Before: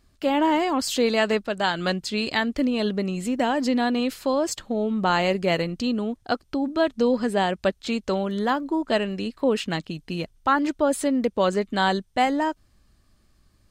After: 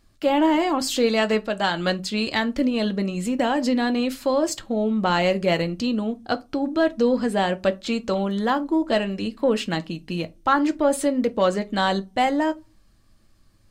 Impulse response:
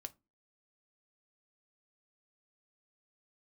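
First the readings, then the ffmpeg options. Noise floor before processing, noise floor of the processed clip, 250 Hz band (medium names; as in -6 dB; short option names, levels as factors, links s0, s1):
-62 dBFS, -57 dBFS, +1.5 dB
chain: -filter_complex "[0:a]acontrast=53[s0];[1:a]atrim=start_sample=2205[s1];[s0][s1]afir=irnorm=-1:irlink=0"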